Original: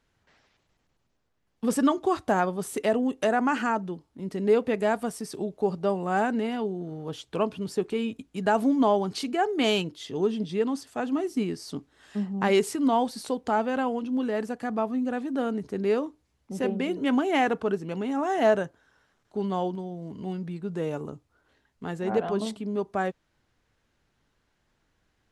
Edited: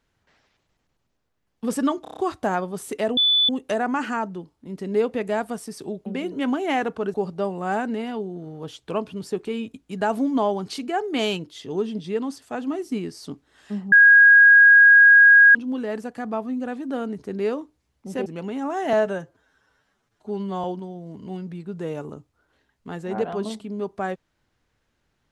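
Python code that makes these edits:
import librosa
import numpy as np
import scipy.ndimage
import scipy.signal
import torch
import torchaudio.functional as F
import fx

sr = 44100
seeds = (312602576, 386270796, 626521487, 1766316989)

y = fx.edit(x, sr, fx.stutter(start_s=2.02, slice_s=0.03, count=6),
    fx.insert_tone(at_s=3.02, length_s=0.32, hz=3480.0, db=-15.0),
    fx.bleep(start_s=12.37, length_s=1.63, hz=1640.0, db=-8.0),
    fx.move(start_s=16.71, length_s=1.08, to_s=5.59),
    fx.stretch_span(start_s=18.46, length_s=1.14, factor=1.5), tone=tone)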